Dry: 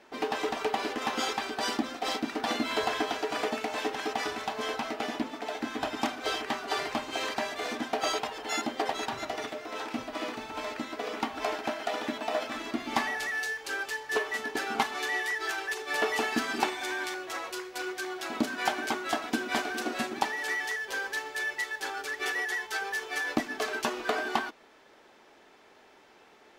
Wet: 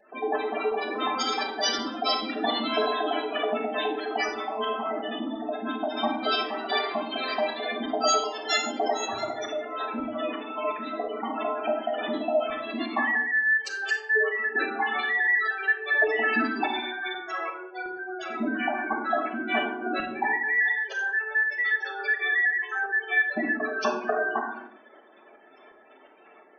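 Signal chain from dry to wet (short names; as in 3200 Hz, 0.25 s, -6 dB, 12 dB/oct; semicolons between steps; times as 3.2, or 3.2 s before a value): spectral gate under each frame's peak -10 dB strong; high shelf 2300 Hz +10 dB; tremolo saw up 2.8 Hz, depth 60%; reverb RT60 0.70 s, pre-delay 3 ms, DRR 0.5 dB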